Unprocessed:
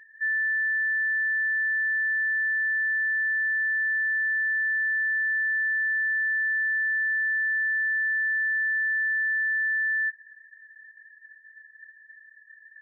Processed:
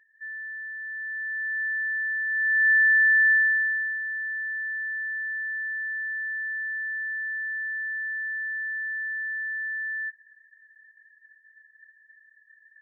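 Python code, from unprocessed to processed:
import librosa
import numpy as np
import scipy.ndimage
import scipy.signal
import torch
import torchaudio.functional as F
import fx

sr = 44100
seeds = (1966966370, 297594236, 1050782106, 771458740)

y = fx.gain(x, sr, db=fx.line((0.77, -11.0), (1.63, -2.5), (2.26, -2.5), (2.7, 7.0), (3.32, 7.0), (4.0, -5.5)))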